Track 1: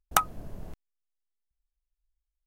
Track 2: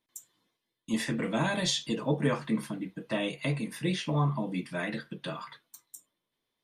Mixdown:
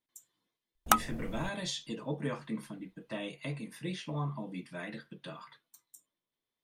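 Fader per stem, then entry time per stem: -1.5, -8.0 dB; 0.75, 0.00 s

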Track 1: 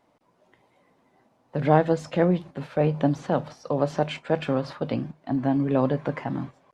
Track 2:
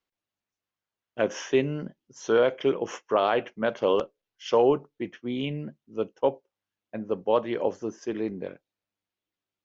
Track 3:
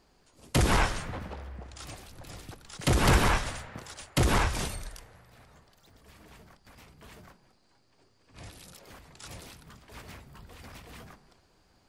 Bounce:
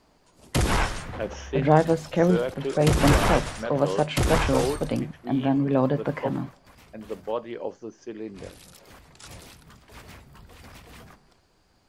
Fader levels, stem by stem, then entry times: +0.5, -6.0, +1.0 dB; 0.00, 0.00, 0.00 s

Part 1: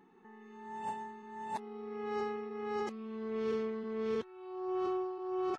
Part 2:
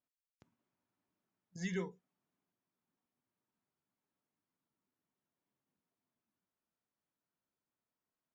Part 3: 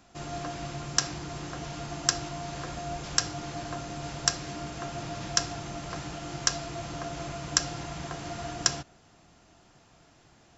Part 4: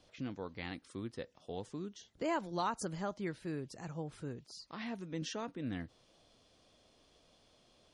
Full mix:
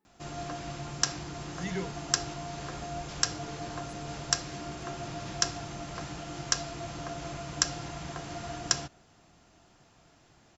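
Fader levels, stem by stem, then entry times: -18.5, +3.0, -2.0, -18.5 dB; 0.00, 0.00, 0.05, 1.10 s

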